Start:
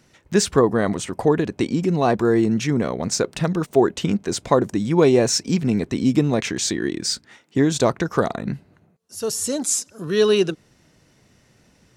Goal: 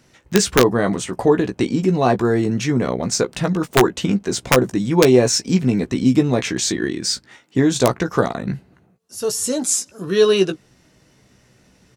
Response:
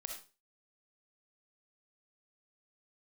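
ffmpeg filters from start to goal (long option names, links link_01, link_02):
-filter_complex "[0:a]aeval=exprs='(mod(1.88*val(0)+1,2)-1)/1.88':channel_layout=same,asplit=2[link_01][link_02];[link_02]adelay=16,volume=-7dB[link_03];[link_01][link_03]amix=inputs=2:normalize=0,volume=1.5dB"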